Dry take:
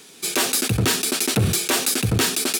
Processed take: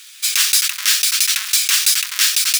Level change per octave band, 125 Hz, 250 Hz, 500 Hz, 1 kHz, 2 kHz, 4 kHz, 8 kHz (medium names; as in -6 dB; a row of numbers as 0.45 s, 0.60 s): under -40 dB, under -40 dB, under -40 dB, -5.0 dB, +5.0 dB, +8.0 dB, +7.0 dB